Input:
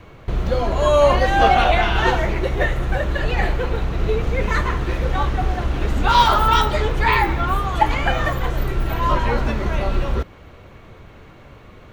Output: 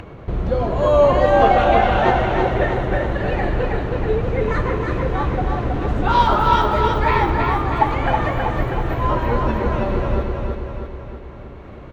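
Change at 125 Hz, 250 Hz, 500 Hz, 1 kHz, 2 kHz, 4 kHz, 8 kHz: +0.5 dB, +3.5 dB, +3.0 dB, +1.0 dB, -2.5 dB, -6.0 dB, no reading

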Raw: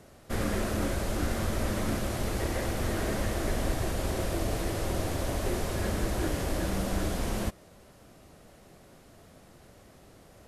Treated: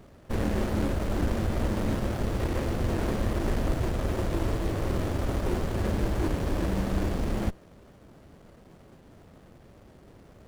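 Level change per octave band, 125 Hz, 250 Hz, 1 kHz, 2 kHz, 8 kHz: +3.5 dB, +3.0 dB, +0.5 dB, -2.0 dB, -7.0 dB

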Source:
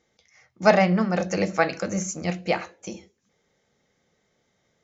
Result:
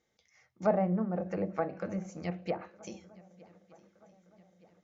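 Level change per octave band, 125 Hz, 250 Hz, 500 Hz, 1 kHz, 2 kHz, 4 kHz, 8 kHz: -8.5 dB, -8.5 dB, -9.5 dB, -11.5 dB, -19.5 dB, -20.5 dB, no reading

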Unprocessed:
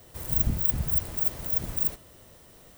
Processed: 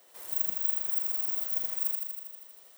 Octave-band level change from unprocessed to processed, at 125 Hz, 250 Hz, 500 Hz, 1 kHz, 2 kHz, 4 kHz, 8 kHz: under -30 dB, under -20 dB, -9.0 dB, -5.5 dB, -4.0 dB, -2.5 dB, -1.5 dB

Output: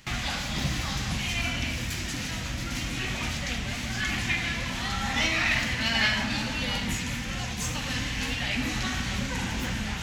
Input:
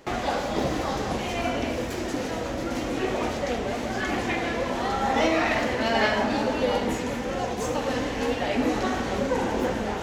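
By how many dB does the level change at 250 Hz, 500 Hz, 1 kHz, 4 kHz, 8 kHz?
-5.5 dB, -15.5 dB, -8.5 dB, +5.0 dB, +5.0 dB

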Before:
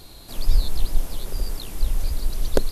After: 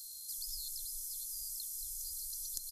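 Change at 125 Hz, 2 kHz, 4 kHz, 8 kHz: under -35 dB, under -40 dB, -9.0 dB, +1.0 dB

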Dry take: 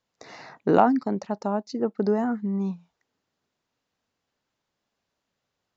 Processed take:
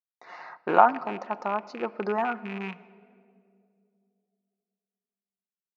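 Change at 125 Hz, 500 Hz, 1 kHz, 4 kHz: -10.5 dB, -3.5 dB, +3.0 dB, -1.0 dB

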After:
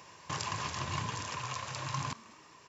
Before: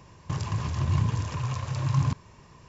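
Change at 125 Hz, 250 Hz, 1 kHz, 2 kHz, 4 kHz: -15.5 dB, -12.0 dB, 0.0 dB, +2.0 dB, +3.0 dB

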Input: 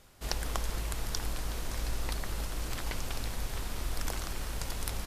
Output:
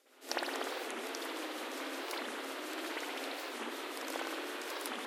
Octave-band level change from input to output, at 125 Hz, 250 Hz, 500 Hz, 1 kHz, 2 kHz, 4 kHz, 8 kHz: under -35 dB, +1.5 dB, +3.5 dB, +1.5 dB, +2.5 dB, -1.0 dB, -6.5 dB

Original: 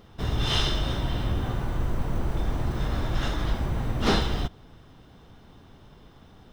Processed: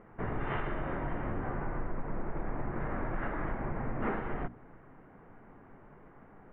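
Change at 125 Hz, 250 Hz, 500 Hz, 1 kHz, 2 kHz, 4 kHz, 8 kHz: -11.0 dB, -6.5 dB, -4.5 dB, -4.0 dB, -5.0 dB, under -25 dB, under -35 dB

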